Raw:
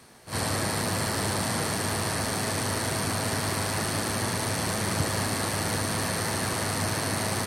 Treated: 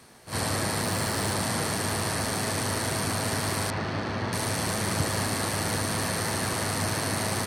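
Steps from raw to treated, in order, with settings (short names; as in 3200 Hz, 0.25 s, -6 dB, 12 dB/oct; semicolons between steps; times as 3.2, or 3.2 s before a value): 0.83–1.33 modulation noise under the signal 23 dB; 3.7–4.33 air absorption 210 m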